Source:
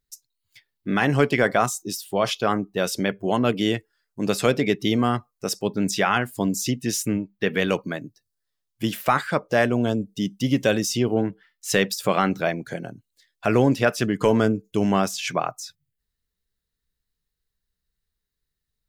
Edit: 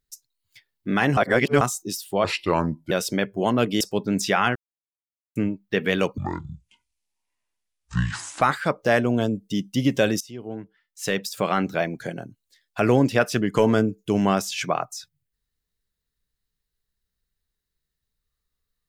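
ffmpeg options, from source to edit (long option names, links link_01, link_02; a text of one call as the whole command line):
ffmpeg -i in.wav -filter_complex "[0:a]asplit=11[link_01][link_02][link_03][link_04][link_05][link_06][link_07][link_08][link_09][link_10][link_11];[link_01]atrim=end=1.172[link_12];[link_02]atrim=start=1.168:end=1.612,asetpts=PTS-STARTPTS,areverse[link_13];[link_03]atrim=start=1.608:end=2.244[link_14];[link_04]atrim=start=2.24:end=2.78,asetpts=PTS-STARTPTS,asetrate=35280,aresample=44100[link_15];[link_05]atrim=start=2.776:end=3.672[link_16];[link_06]atrim=start=5.498:end=6.25,asetpts=PTS-STARTPTS,afade=type=out:start_time=0.748:duration=0.004:curve=hsin[link_17];[link_07]atrim=start=6.25:end=7.05,asetpts=PTS-STARTPTS,volume=0[link_18];[link_08]atrim=start=7.05:end=7.874,asetpts=PTS-STARTPTS,afade=type=in:duration=0.004:curve=hsin[link_19];[link_09]atrim=start=7.87:end=9.08,asetpts=PTS-STARTPTS,asetrate=23814,aresample=44100[link_20];[link_10]atrim=start=9.076:end=10.87,asetpts=PTS-STARTPTS,afade=type=out:start_time=1.79:duration=0.004:curve=hsin:silence=0.0944061[link_21];[link_11]atrim=start=10.87,asetpts=PTS-STARTPTS,afade=type=in:duration=1.73:silence=0.0944061[link_22];[link_12][link_13]acrossfade=duration=0.004:curve1=hsin:curve2=hsin[link_23];[link_23][link_14]acrossfade=duration=0.004:curve1=hsin:curve2=hsin[link_24];[link_24][link_15]acrossfade=duration=0.004:curve1=hsin:curve2=hsin[link_25];[link_25][link_16]acrossfade=duration=0.004:curve1=hsin:curve2=hsin[link_26];[link_17][link_18][link_19]concat=n=3:v=0:a=1[link_27];[link_26][link_27]acrossfade=duration=0.004:curve1=hsin:curve2=hsin[link_28];[link_28][link_20]acrossfade=duration=0.004:curve1=hsin:curve2=hsin[link_29];[link_21][link_22]concat=n=2:v=0:a=1[link_30];[link_29][link_30]acrossfade=duration=0.004:curve1=hsin:curve2=hsin" out.wav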